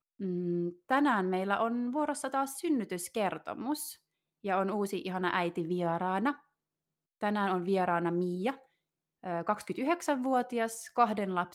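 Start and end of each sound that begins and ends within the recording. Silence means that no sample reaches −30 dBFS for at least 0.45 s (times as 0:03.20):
0:04.46–0:06.31
0:07.23–0:08.51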